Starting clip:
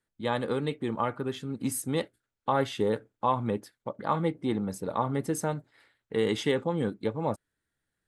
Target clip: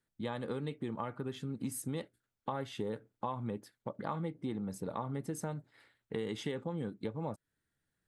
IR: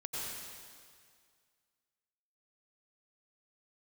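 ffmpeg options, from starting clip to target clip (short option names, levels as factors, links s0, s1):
-af "equalizer=f=150:w=0.87:g=4.5,acompressor=threshold=0.0224:ratio=4,volume=0.75"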